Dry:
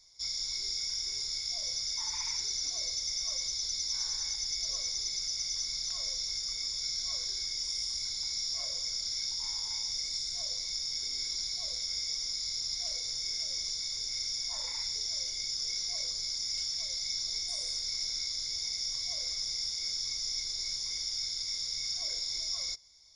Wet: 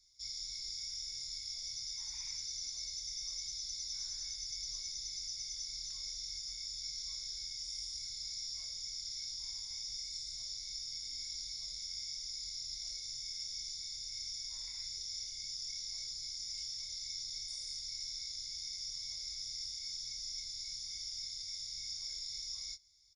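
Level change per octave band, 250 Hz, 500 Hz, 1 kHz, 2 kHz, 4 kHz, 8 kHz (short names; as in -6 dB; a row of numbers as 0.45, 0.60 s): n/a, under -20 dB, under -15 dB, -11.0 dB, -8.0 dB, -7.5 dB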